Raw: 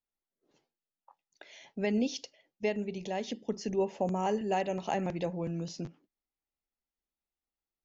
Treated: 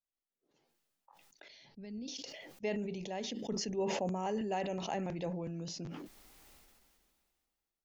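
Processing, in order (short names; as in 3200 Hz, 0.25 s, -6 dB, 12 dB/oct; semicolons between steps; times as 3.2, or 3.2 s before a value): 1.48–2.08 EQ curve 100 Hz 0 dB, 740 Hz -20 dB, 3300 Hz -16 dB, 4600 Hz -3 dB, 6900 Hz -27 dB; sustainer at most 27 dB/s; gain -6 dB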